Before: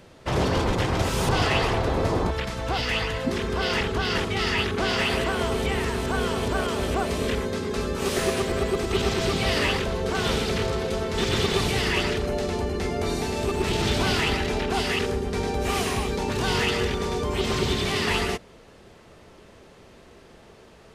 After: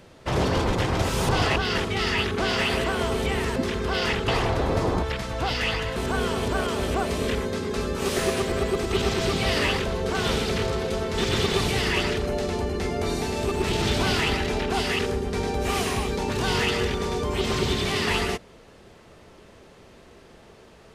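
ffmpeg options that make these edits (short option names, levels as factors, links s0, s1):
-filter_complex "[0:a]asplit=5[s0][s1][s2][s3][s4];[s0]atrim=end=1.562[s5];[s1]atrim=start=3.958:end=5.962[s6];[s2]atrim=start=3.238:end=3.962[s7];[s3]atrim=start=1.558:end=3.242[s8];[s4]atrim=start=5.958[s9];[s5][s6]acrossfade=d=0.004:c1=hsin:c2=hsin[s10];[s10][s7]acrossfade=d=0.004:c1=hsin:c2=hsin[s11];[s11][s8]acrossfade=d=0.004:c1=hsin:c2=hsin[s12];[s12][s9]acrossfade=d=0.004:c1=hsin:c2=hsin"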